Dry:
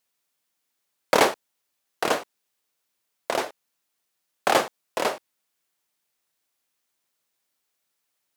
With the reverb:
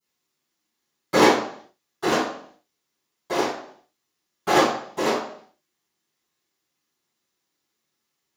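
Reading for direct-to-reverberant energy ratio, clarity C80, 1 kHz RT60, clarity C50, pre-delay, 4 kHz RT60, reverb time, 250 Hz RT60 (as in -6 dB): -22.0 dB, 7.0 dB, 0.55 s, 3.0 dB, 3 ms, 0.60 s, 0.60 s, 0.60 s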